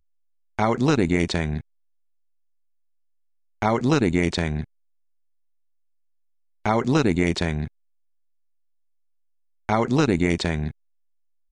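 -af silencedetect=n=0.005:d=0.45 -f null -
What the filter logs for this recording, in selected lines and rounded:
silence_start: 0.00
silence_end: 0.59 | silence_duration: 0.59
silence_start: 1.61
silence_end: 3.62 | silence_duration: 2.01
silence_start: 4.64
silence_end: 6.66 | silence_duration: 2.01
silence_start: 7.68
silence_end: 9.69 | silence_duration: 2.01
silence_start: 10.71
silence_end: 11.51 | silence_duration: 0.80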